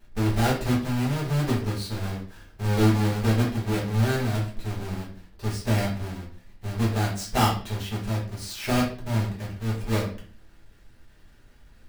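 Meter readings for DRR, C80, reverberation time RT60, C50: −5.5 dB, 11.0 dB, 0.45 s, 6.5 dB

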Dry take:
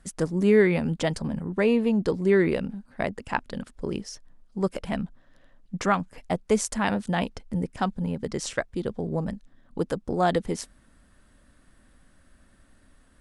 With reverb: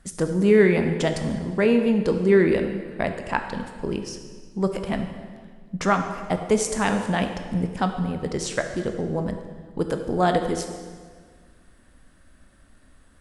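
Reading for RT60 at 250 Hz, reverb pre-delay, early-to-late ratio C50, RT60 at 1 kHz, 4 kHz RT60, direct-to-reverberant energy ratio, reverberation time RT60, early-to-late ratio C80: 1.9 s, 14 ms, 7.5 dB, 1.6 s, 1.4 s, 5.5 dB, 1.7 s, 8.5 dB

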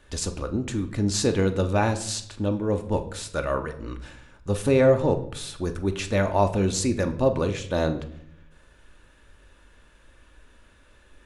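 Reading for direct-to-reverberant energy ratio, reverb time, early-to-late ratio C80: 6.5 dB, 0.70 s, 16.0 dB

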